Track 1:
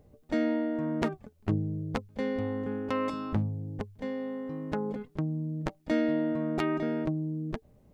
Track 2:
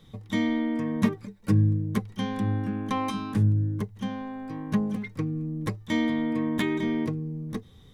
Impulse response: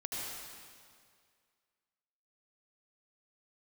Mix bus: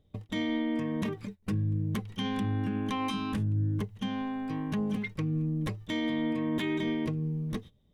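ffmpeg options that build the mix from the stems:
-filter_complex "[0:a]lowshelf=f=330:g=10.5,volume=0.15[s0];[1:a]agate=range=0.0501:threshold=0.00891:ratio=16:detection=peak,equalizer=f=2900:t=o:w=0.66:g=7.5,alimiter=limit=0.0944:level=0:latency=1:release=13,volume=1.06[s1];[s0][s1]amix=inputs=2:normalize=0,alimiter=limit=0.0708:level=0:latency=1:release=141"

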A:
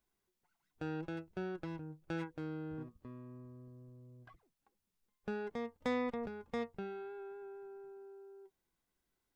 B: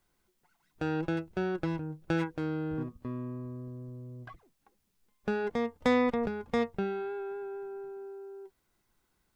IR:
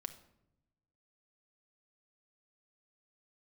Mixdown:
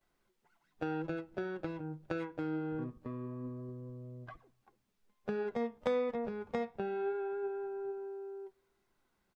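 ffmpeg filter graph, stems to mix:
-filter_complex "[0:a]equalizer=f=590:w=1.5:g=11.5,volume=0.501[s0];[1:a]lowpass=f=3200:p=1,acompressor=threshold=0.02:ratio=6,flanger=delay=1.5:depth=9:regen=78:speed=0.24:shape=sinusoidal,volume=-1,adelay=11,volume=1.26,asplit=2[s1][s2];[s2]volume=0.398[s3];[2:a]atrim=start_sample=2205[s4];[s3][s4]afir=irnorm=-1:irlink=0[s5];[s0][s1][s5]amix=inputs=3:normalize=0,lowshelf=f=120:g=-6.5"

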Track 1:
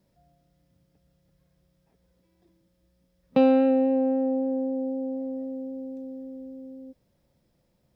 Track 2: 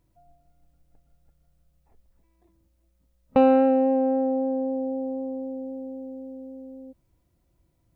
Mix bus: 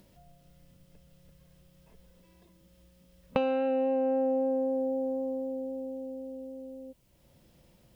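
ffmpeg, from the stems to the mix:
-filter_complex "[0:a]acompressor=mode=upward:threshold=0.0158:ratio=2.5,volume=0.316[s0];[1:a]highshelf=f=2100:g=11,volume=0.794[s1];[s0][s1]amix=inputs=2:normalize=0,equalizer=f=2900:t=o:w=0.38:g=6.5,acompressor=threshold=0.0631:ratio=10"

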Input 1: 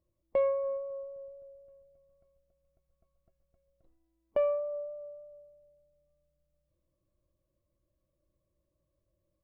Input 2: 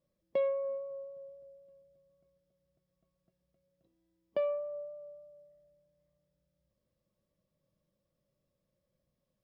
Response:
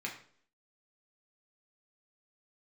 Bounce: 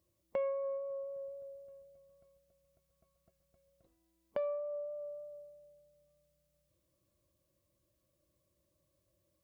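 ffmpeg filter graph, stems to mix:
-filter_complex "[0:a]highshelf=f=2200:g=8.5,acompressor=threshold=0.00631:ratio=2.5,volume=1.19[s0];[1:a]volume=0.211[s1];[s0][s1]amix=inputs=2:normalize=0,highpass=68"

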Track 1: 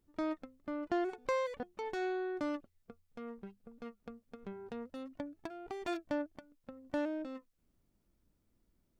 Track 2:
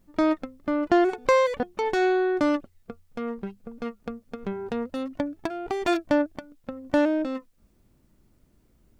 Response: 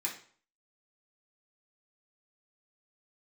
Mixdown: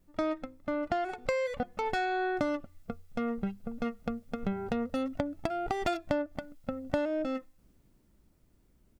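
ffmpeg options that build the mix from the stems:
-filter_complex "[0:a]lowshelf=f=280:g=5.5,dynaudnorm=f=200:g=17:m=5.01,volume=0.891[s0];[1:a]adelay=1.5,volume=0.531,asplit=2[s1][s2];[s2]volume=0.0891[s3];[2:a]atrim=start_sample=2205[s4];[s3][s4]afir=irnorm=-1:irlink=0[s5];[s0][s1][s5]amix=inputs=3:normalize=0,acompressor=threshold=0.0447:ratio=6"

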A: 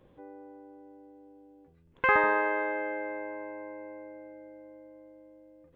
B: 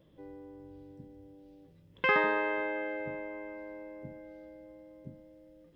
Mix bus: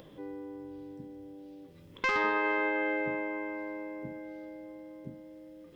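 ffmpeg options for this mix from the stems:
-filter_complex "[0:a]volume=0.562[s0];[1:a]highpass=f=240:p=1,aeval=exprs='0.237*sin(PI/2*1.78*val(0)/0.237)':c=same,volume=0.794[s1];[s0][s1]amix=inputs=2:normalize=0,acompressor=mode=upward:threshold=0.00501:ratio=2.5,alimiter=limit=0.0891:level=0:latency=1:release=197"

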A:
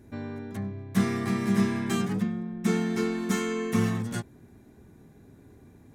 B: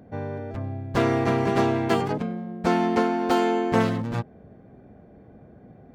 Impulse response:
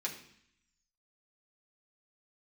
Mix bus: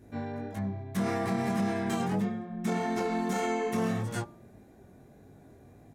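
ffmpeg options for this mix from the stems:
-filter_complex "[0:a]flanger=delay=19:depth=3.8:speed=1.7,volume=1.12,asplit=2[s0][s1];[s1]volume=0.0841[s2];[1:a]equalizer=f=760:t=o:w=2.2:g=14,adelay=27,volume=0.106[s3];[2:a]atrim=start_sample=2205[s4];[s2][s4]afir=irnorm=-1:irlink=0[s5];[s0][s3][s5]amix=inputs=3:normalize=0,bandreject=f=84.94:t=h:w=4,bandreject=f=169.88:t=h:w=4,bandreject=f=254.82:t=h:w=4,bandreject=f=339.76:t=h:w=4,bandreject=f=424.7:t=h:w=4,bandreject=f=509.64:t=h:w=4,bandreject=f=594.58:t=h:w=4,bandreject=f=679.52:t=h:w=4,bandreject=f=764.46:t=h:w=4,bandreject=f=849.4:t=h:w=4,bandreject=f=934.34:t=h:w=4,bandreject=f=1019.28:t=h:w=4,bandreject=f=1104.22:t=h:w=4,bandreject=f=1189.16:t=h:w=4,bandreject=f=1274.1:t=h:w=4,alimiter=limit=0.0891:level=0:latency=1:release=42"

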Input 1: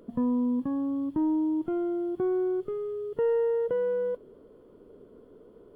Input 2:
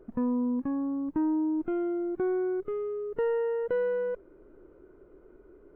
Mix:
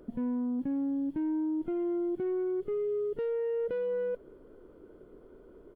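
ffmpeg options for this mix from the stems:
-filter_complex "[0:a]volume=0.631[s0];[1:a]asoftclip=type=tanh:threshold=0.0531,adelay=0.4,volume=0.891[s1];[s0][s1]amix=inputs=2:normalize=0,alimiter=level_in=1.5:limit=0.0631:level=0:latency=1:release=20,volume=0.668"

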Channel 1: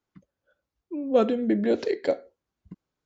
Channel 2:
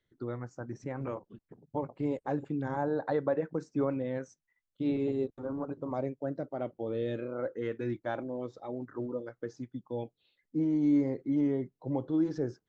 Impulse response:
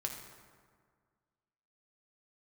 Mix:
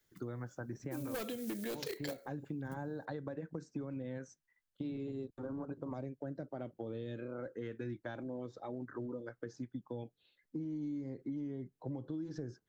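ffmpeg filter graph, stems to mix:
-filter_complex "[0:a]acrusher=bits=8:mode=log:mix=0:aa=0.000001,crystalizer=i=8:c=0,aeval=exprs='0.178*(abs(mod(val(0)/0.178+3,4)-2)-1)':c=same,volume=0.422[s0];[1:a]equalizer=f=1600:w=6.2:g=6,acrossover=split=270|3000[s1][s2][s3];[s2]acompressor=threshold=0.01:ratio=6[s4];[s1][s4][s3]amix=inputs=3:normalize=0,volume=0.944[s5];[s0][s5]amix=inputs=2:normalize=0,acompressor=threshold=0.0141:ratio=10"

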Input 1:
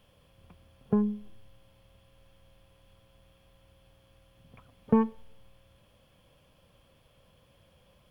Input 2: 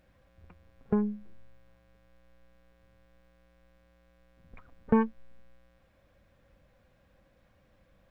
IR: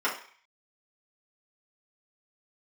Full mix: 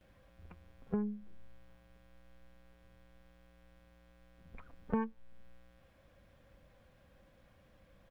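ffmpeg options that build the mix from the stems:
-filter_complex "[0:a]volume=0.178[s0];[1:a]adelay=11,volume=1.06[s1];[s0][s1]amix=inputs=2:normalize=0,acompressor=threshold=0.00447:ratio=1.5"

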